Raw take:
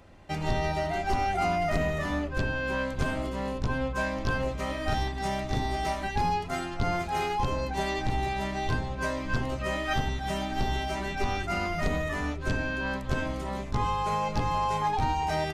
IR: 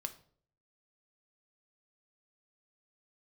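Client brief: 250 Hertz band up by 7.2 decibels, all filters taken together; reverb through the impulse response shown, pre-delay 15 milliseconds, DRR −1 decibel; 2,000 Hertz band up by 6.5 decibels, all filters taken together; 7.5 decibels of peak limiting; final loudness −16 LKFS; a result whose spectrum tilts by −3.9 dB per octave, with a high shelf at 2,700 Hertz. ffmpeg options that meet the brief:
-filter_complex "[0:a]equalizer=frequency=250:width_type=o:gain=9,equalizer=frequency=2000:width_type=o:gain=5.5,highshelf=frequency=2700:gain=6.5,alimiter=limit=-19.5dB:level=0:latency=1,asplit=2[link_01][link_02];[1:a]atrim=start_sample=2205,adelay=15[link_03];[link_02][link_03]afir=irnorm=-1:irlink=0,volume=2.5dB[link_04];[link_01][link_04]amix=inputs=2:normalize=0,volume=9.5dB"

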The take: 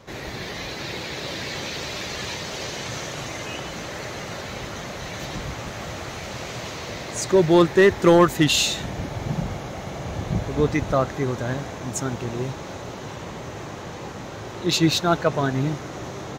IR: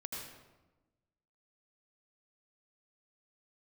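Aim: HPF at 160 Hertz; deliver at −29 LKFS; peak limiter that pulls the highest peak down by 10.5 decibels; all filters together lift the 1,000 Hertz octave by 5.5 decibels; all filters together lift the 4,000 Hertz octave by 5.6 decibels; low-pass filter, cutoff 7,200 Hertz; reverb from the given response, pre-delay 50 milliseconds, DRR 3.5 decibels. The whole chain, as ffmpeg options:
-filter_complex "[0:a]highpass=160,lowpass=7200,equalizer=frequency=1000:width_type=o:gain=6.5,equalizer=frequency=4000:width_type=o:gain=6.5,alimiter=limit=-10.5dB:level=0:latency=1,asplit=2[link_01][link_02];[1:a]atrim=start_sample=2205,adelay=50[link_03];[link_02][link_03]afir=irnorm=-1:irlink=0,volume=-3dB[link_04];[link_01][link_04]amix=inputs=2:normalize=0,volume=-5dB"

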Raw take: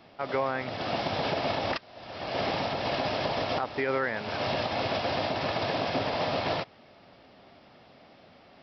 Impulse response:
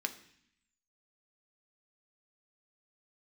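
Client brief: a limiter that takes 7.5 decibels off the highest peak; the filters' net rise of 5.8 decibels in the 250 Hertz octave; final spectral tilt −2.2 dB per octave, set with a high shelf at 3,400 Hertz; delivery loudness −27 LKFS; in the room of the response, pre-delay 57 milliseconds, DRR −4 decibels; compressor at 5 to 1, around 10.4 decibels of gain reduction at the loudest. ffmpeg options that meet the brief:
-filter_complex "[0:a]equalizer=frequency=250:width_type=o:gain=7,highshelf=frequency=3400:gain=5.5,acompressor=threshold=-34dB:ratio=5,alimiter=level_in=5dB:limit=-24dB:level=0:latency=1,volume=-5dB,asplit=2[link_01][link_02];[1:a]atrim=start_sample=2205,adelay=57[link_03];[link_02][link_03]afir=irnorm=-1:irlink=0,volume=2dB[link_04];[link_01][link_04]amix=inputs=2:normalize=0,volume=7dB"

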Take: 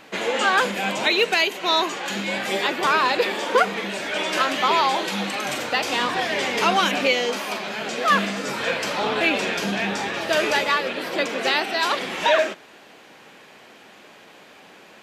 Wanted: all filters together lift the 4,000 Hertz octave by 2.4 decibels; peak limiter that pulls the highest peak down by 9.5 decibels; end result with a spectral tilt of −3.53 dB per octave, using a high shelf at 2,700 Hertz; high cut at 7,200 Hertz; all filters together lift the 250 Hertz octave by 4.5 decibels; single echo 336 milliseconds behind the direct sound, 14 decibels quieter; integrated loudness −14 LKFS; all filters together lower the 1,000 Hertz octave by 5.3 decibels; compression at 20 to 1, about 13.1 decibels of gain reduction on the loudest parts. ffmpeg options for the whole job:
ffmpeg -i in.wav -af "lowpass=7200,equalizer=frequency=250:width_type=o:gain=6.5,equalizer=frequency=1000:width_type=o:gain=-7,highshelf=frequency=2700:gain=-3.5,equalizer=frequency=4000:width_type=o:gain=6.5,acompressor=threshold=-27dB:ratio=20,alimiter=level_in=2.5dB:limit=-24dB:level=0:latency=1,volume=-2.5dB,aecho=1:1:336:0.2,volume=20.5dB" out.wav

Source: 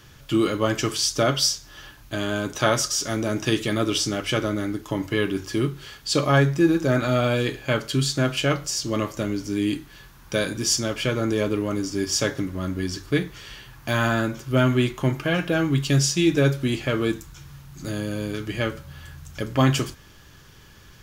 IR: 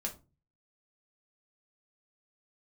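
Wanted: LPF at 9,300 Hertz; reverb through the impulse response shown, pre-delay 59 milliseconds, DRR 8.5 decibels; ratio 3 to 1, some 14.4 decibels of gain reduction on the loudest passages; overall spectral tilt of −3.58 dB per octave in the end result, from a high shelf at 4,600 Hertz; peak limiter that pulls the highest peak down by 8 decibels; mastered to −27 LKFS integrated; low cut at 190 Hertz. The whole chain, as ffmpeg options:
-filter_complex "[0:a]highpass=190,lowpass=9300,highshelf=frequency=4600:gain=3.5,acompressor=threshold=-35dB:ratio=3,alimiter=level_in=1dB:limit=-24dB:level=0:latency=1,volume=-1dB,asplit=2[link_01][link_02];[1:a]atrim=start_sample=2205,adelay=59[link_03];[link_02][link_03]afir=irnorm=-1:irlink=0,volume=-9dB[link_04];[link_01][link_04]amix=inputs=2:normalize=0,volume=9dB"

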